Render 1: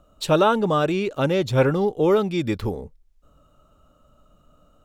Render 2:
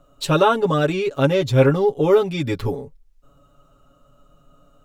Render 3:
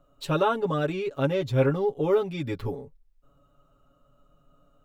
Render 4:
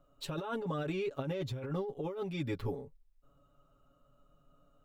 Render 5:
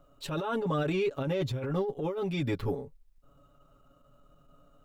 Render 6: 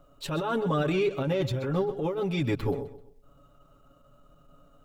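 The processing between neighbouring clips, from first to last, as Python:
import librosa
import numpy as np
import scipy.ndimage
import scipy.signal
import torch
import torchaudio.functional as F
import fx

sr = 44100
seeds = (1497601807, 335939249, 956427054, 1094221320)

y1 = x + 0.85 * np.pad(x, (int(7.2 * sr / 1000.0), 0))[:len(x)]
y2 = fx.peak_eq(y1, sr, hz=7300.0, db=-5.5, octaves=1.8)
y2 = y2 * 10.0 ** (-7.5 / 20.0)
y3 = fx.over_compress(y2, sr, threshold_db=-28.0, ratio=-1.0)
y3 = y3 * 10.0 ** (-8.0 / 20.0)
y4 = fx.transient(y3, sr, attack_db=-8, sustain_db=-3)
y4 = y4 * 10.0 ** (7.5 / 20.0)
y5 = fx.echo_feedback(y4, sr, ms=129, feedback_pct=35, wet_db=-14.5)
y5 = y5 * 10.0 ** (3.0 / 20.0)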